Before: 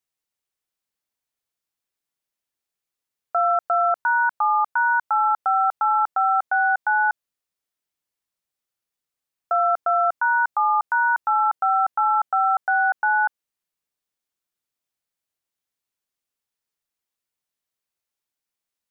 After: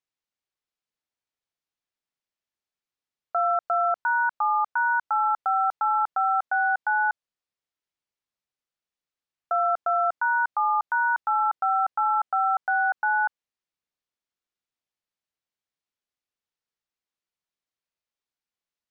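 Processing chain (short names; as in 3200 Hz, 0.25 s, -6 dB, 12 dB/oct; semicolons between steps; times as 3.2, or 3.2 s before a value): LPF 5700 Hz; gain -3.5 dB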